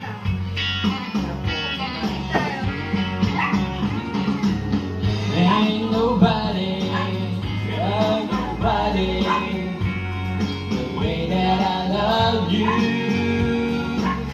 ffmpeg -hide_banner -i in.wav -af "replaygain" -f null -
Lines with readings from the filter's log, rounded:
track_gain = +3.0 dB
track_peak = 0.472